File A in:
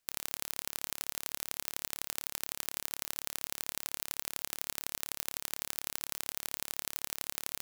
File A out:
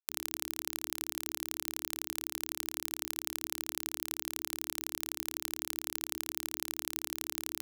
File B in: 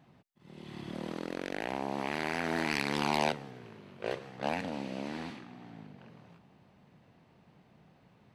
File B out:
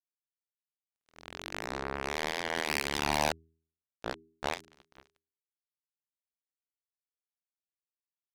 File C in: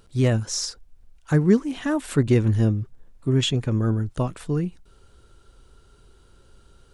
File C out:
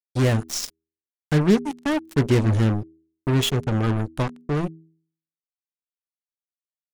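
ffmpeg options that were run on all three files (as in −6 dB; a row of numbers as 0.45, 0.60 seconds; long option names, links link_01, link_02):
-af "acrusher=bits=3:mix=0:aa=0.5,bandreject=frequency=80.86:width_type=h:width=4,bandreject=frequency=161.72:width_type=h:width=4,bandreject=frequency=242.58:width_type=h:width=4,bandreject=frequency=323.44:width_type=h:width=4,bandreject=frequency=404.3:width_type=h:width=4"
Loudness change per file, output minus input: +0.5, +0.5, 0.0 LU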